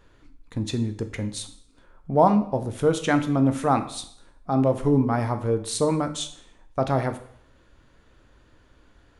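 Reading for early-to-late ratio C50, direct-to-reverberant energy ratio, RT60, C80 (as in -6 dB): 12.5 dB, 8.0 dB, 0.60 s, 15.0 dB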